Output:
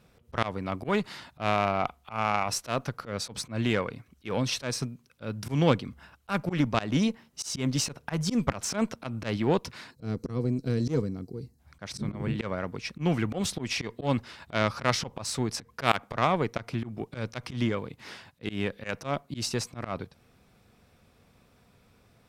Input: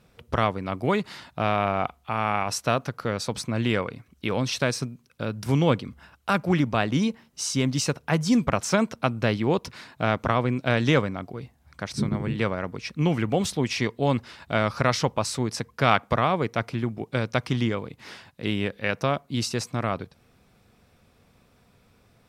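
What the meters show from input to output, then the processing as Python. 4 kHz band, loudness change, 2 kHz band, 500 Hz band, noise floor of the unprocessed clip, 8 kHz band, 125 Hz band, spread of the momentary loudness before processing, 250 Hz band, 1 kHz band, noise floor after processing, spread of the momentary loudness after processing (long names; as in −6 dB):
−3.0 dB, −4.5 dB, −5.5 dB, −5.0 dB, −61 dBFS, −2.0 dB, −4.5 dB, 11 LU, −4.0 dB, −4.5 dB, −63 dBFS, 12 LU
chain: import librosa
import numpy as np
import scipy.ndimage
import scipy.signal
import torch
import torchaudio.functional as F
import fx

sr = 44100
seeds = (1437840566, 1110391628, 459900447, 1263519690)

y = fx.spec_box(x, sr, start_s=9.91, length_s=1.68, low_hz=500.0, high_hz=3900.0, gain_db=-16)
y = fx.cheby_harmonics(y, sr, harmonics=(2, 3, 6, 8), levels_db=(-11, -38, -40, -23), full_scale_db=-2.5)
y = fx.auto_swell(y, sr, attack_ms=110.0)
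y = y * librosa.db_to_amplitude(-1.0)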